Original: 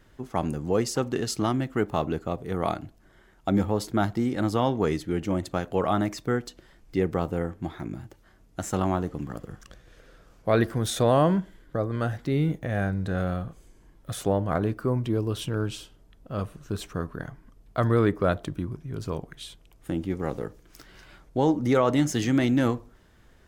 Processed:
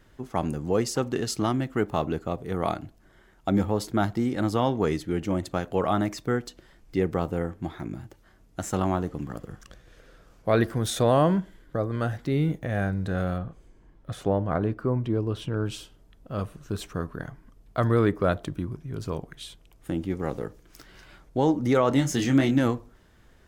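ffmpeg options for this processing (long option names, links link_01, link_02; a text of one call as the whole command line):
ffmpeg -i in.wav -filter_complex "[0:a]asettb=1/sr,asplit=3[link_01][link_02][link_03];[link_01]atrim=end=13.384[link_04];[link_02]atrim=start=13.38:end=15.66,asetpts=PTS-STARTPTS,afade=type=in:duration=0.004:curve=qsin,afade=type=out:start_time=2.276:duration=0.004:curve=qsin,lowpass=frequency=2300:poles=1[link_05];[link_03]atrim=start=15.656[link_06];[link_04][link_05]acrossfade=duration=0.004:curve1=hsin:curve2=qsin[link_07];[link_07][link_06]acrossfade=duration=0.004:curve1=qsin:curve2=hsin,asettb=1/sr,asplit=3[link_08][link_09][link_10];[link_08]atrim=end=21.894[link_11];[link_09]atrim=start=21.89:end=22.59,asetpts=PTS-STARTPTS,afade=type=in:duration=0.004:curve=qsin,afade=type=out:start_time=0.696:duration=0.004:curve=qsin,asplit=2[link_12][link_13];[link_13]adelay=22,volume=-6dB[link_14];[link_12][link_14]amix=inputs=2:normalize=0,atrim=end_sample=30870[link_15];[link_10]atrim=start=22.586[link_16];[link_11][link_15]acrossfade=duration=0.004:curve1=hsin:curve2=qsin[link_17];[link_17][link_16]acrossfade=duration=0.004:curve1=qsin:curve2=hsin" out.wav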